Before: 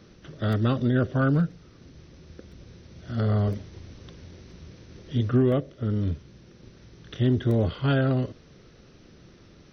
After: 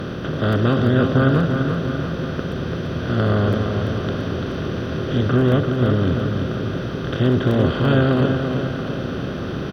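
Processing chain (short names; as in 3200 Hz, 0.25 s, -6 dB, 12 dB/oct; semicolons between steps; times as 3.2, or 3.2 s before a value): per-bin compression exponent 0.4; feedback echo 0.34 s, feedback 56%, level -6 dB; gain +1.5 dB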